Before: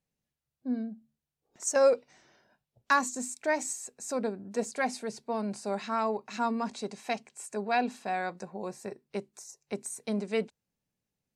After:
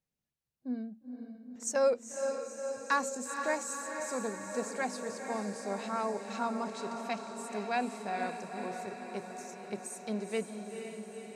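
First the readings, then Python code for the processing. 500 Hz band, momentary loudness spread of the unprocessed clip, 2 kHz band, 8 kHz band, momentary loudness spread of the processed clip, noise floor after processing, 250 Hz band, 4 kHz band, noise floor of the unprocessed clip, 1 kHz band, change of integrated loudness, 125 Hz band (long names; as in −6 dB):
−3.0 dB, 13 LU, −3.0 dB, −3.0 dB, 11 LU, below −85 dBFS, −3.0 dB, −3.0 dB, below −85 dBFS, −3.0 dB, −4.0 dB, −3.0 dB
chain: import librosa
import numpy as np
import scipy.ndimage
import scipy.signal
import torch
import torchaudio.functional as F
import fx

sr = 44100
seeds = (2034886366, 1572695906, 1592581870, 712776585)

y = fx.echo_diffused(x, sr, ms=481, feedback_pct=67, wet_db=-6.5)
y = y * librosa.db_to_amplitude(-4.5)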